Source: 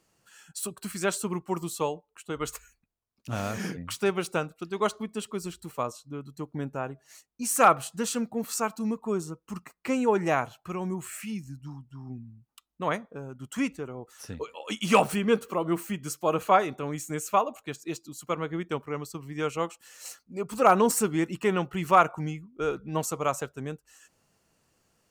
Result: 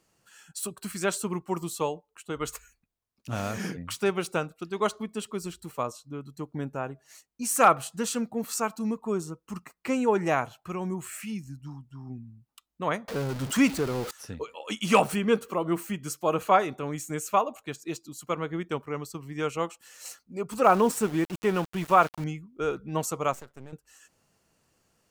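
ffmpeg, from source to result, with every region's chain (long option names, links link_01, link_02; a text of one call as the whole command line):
ffmpeg -i in.wav -filter_complex "[0:a]asettb=1/sr,asplit=3[link_01][link_02][link_03];[link_01]atrim=end=13.084[link_04];[link_02]atrim=start=13.08:end=14.11,asetpts=PTS-STARTPTS,afade=type=in:duration=0.004:curve=qsin,afade=type=out:start_time=1.026:duration=0.004:curve=qsin,aeval=exprs='val(0)+0.5*0.0133*sgn(val(0))':channel_layout=same,equalizer=frequency=4600:width=2.3:gain=4,acontrast=51[link_05];[link_03]atrim=start=14.106[link_06];[link_04][link_05]acrossfade=duration=0.004:curve1=hsin:curve2=qsin[link_07];[link_07][link_06]acrossfade=duration=0.004:curve1=qsin:curve2=hsin,asettb=1/sr,asplit=3[link_08][link_09][link_10];[link_08]atrim=end=20.644[link_11];[link_09]atrim=start=20.64:end=22.24,asetpts=PTS-STARTPTS,afade=type=in:duration=0.004:curve=qsin,afade=type=out:start_time=1.596:duration=0.004:curve=qsin,highshelf=frequency=3900:gain=-6.5,bandreject=frequency=2100:width=18,aeval=exprs='val(0)*gte(abs(val(0)),0.0158)':channel_layout=same[link_12];[link_10]atrim=start=22.236[link_13];[link_11][link_12]acrossfade=duration=0.004:curve1=hsin:curve2=qsin[link_14];[link_14][link_13]acrossfade=duration=0.004:curve1=qsin:curve2=hsin,asettb=1/sr,asplit=3[link_15][link_16][link_17];[link_15]atrim=end=23.334[link_18];[link_16]atrim=start=23.33:end=23.73,asetpts=PTS-STARTPTS,afade=type=in:duration=0.004:curve=qsin,afade=type=out:start_time=0.396:duration=0.004:curve=qsin,acompressor=threshold=-38dB:ratio=4:attack=3.2:release=140:knee=1:detection=peak,aeval=exprs='max(val(0),0)':channel_layout=same[link_19];[link_17]atrim=start=23.726[link_20];[link_18][link_19]acrossfade=duration=0.004:curve1=hsin:curve2=qsin[link_21];[link_21][link_20]acrossfade=duration=0.004:curve1=qsin:curve2=hsin" out.wav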